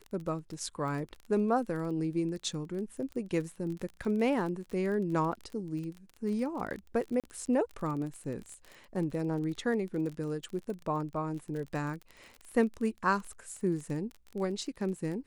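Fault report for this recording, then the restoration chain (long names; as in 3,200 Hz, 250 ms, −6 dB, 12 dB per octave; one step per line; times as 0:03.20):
surface crackle 28 per second −37 dBFS
0:07.20–0:07.24: drop-out 37 ms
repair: click removal
repair the gap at 0:07.20, 37 ms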